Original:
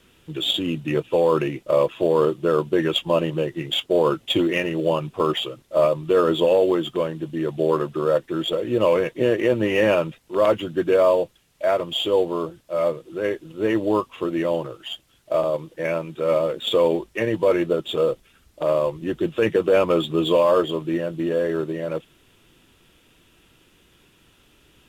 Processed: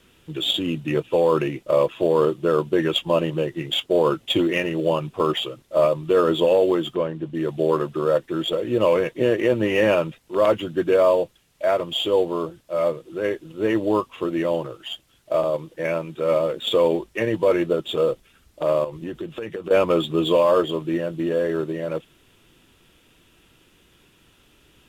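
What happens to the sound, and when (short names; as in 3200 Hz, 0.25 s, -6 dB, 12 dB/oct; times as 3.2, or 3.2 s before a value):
6.95–7.35 LPF 2300 Hz 6 dB/oct
18.84–19.71 compressor 12:1, threshold -26 dBFS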